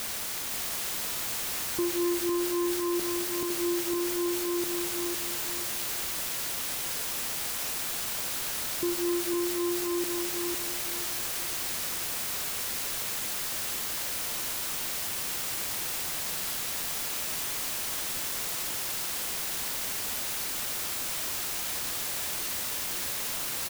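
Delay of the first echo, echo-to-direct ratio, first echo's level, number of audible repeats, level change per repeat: 507 ms, -4.0 dB, -4.5 dB, 2, -11.0 dB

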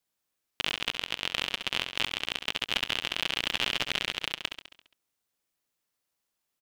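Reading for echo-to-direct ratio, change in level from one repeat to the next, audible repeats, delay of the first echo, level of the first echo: -7.0 dB, -5.0 dB, 6, 68 ms, -8.5 dB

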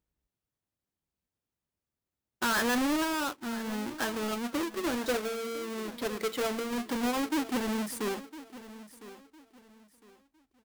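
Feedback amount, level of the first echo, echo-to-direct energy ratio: 29%, -16.0 dB, -15.5 dB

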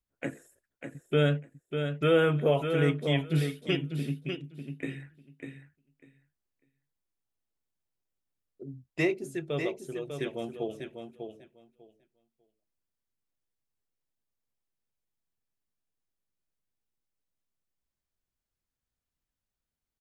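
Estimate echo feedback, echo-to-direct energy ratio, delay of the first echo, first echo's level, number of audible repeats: 16%, -7.0 dB, 597 ms, -7.0 dB, 2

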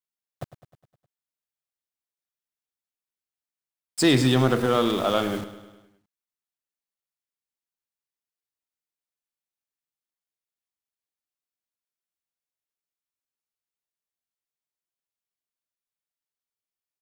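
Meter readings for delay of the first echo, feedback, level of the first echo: 103 ms, 58%, -14.5 dB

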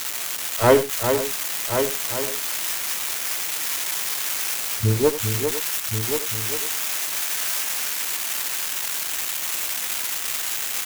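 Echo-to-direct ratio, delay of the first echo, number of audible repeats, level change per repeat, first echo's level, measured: -3.5 dB, 85 ms, 7, no regular repeats, -14.0 dB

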